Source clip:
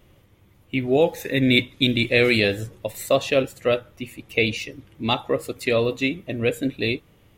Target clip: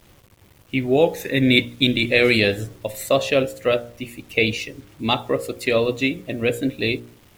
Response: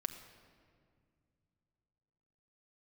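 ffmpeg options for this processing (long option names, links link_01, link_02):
-af "acrusher=bits=8:mix=0:aa=0.000001,bandreject=frequency=59.34:width_type=h:width=4,bandreject=frequency=118.68:width_type=h:width=4,bandreject=frequency=178.02:width_type=h:width=4,bandreject=frequency=237.36:width_type=h:width=4,bandreject=frequency=296.7:width_type=h:width=4,bandreject=frequency=356.04:width_type=h:width=4,bandreject=frequency=415.38:width_type=h:width=4,bandreject=frequency=474.72:width_type=h:width=4,bandreject=frequency=534.06:width_type=h:width=4,bandreject=frequency=593.4:width_type=h:width=4,bandreject=frequency=652.74:width_type=h:width=4,bandreject=frequency=712.08:width_type=h:width=4,volume=2dB"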